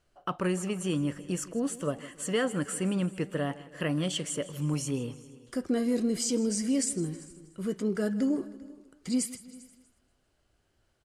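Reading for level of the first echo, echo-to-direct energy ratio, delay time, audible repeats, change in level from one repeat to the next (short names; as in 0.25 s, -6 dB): -18.0 dB, -15.5 dB, 0.159 s, 5, no steady repeat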